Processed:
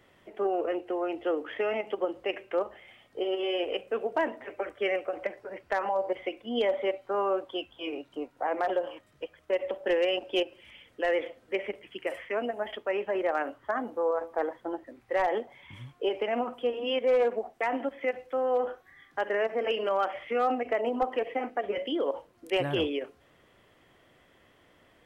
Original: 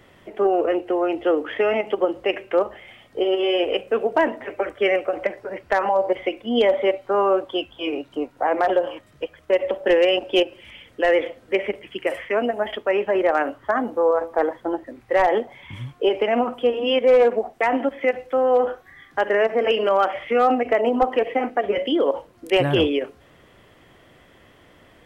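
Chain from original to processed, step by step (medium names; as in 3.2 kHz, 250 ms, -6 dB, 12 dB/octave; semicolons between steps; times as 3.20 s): bass shelf 230 Hz -4 dB; trim -8.5 dB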